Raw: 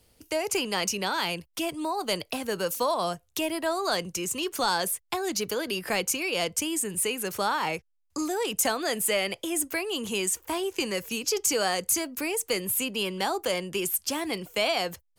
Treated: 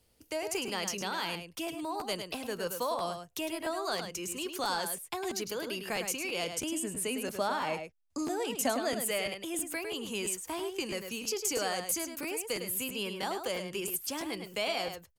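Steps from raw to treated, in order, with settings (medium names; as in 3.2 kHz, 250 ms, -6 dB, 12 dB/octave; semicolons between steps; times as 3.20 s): 6.48–9.00 s: graphic EQ with 31 bands 250 Hz +10 dB, 630 Hz +8 dB, 16 kHz -11 dB; echo from a far wall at 18 m, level -7 dB; crackling interface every 0.33 s, samples 512, repeat, from 0.67 s; trim -7 dB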